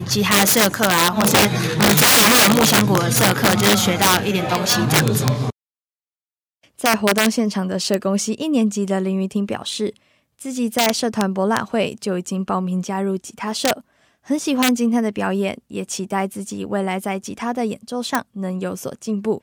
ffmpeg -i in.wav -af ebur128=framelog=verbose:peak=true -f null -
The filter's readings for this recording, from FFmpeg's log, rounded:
Integrated loudness:
  I:         -17.9 LUFS
  Threshold: -28.2 LUFS
Loudness range:
  LRA:         9.7 LU
  Threshold: -38.7 LUFS
  LRA low:   -23.1 LUFS
  LRA high:  -13.4 LUFS
True peak:
  Peak:       -0.1 dBFS